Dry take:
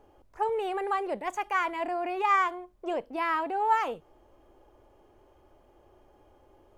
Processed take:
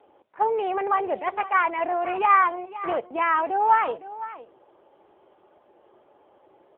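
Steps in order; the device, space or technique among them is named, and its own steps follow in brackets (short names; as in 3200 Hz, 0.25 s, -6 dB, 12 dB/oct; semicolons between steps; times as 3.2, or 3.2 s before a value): 2.18–3.05 HPF 67 Hz 12 dB/oct; satellite phone (BPF 360–3400 Hz; echo 0.51 s -15 dB; gain +7 dB; AMR-NB 6.7 kbps 8000 Hz)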